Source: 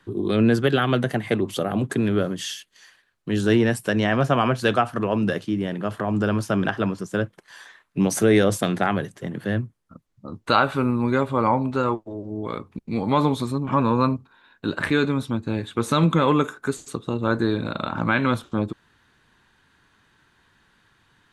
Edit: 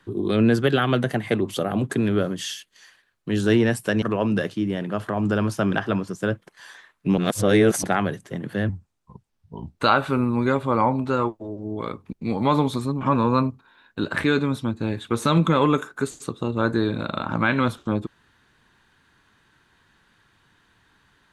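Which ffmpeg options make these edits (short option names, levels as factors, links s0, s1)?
-filter_complex "[0:a]asplit=6[s0][s1][s2][s3][s4][s5];[s0]atrim=end=4.022[s6];[s1]atrim=start=4.928:end=8.092[s7];[s2]atrim=start=8.088:end=8.752,asetpts=PTS-STARTPTS,areverse[s8];[s3]atrim=start=8.748:end=9.604[s9];[s4]atrim=start=9.6:end=10.43,asetpts=PTS-STARTPTS,asetrate=33957,aresample=44100,atrim=end_sample=47536,asetpts=PTS-STARTPTS[s10];[s5]atrim=start=10.426[s11];[s6][s7]acrossfade=d=0.004:c1=hsin:c2=hsin[s12];[s12][s8]acrossfade=d=0.004:c1=hsin:c2=hsin[s13];[s13][s9]acrossfade=d=0.004:c1=hsin:c2=hsin[s14];[s14][s10]acrossfade=d=0.004:c1=hsin:c2=hsin[s15];[s15][s11]acrossfade=d=0.004:c1=hsin:c2=hsin"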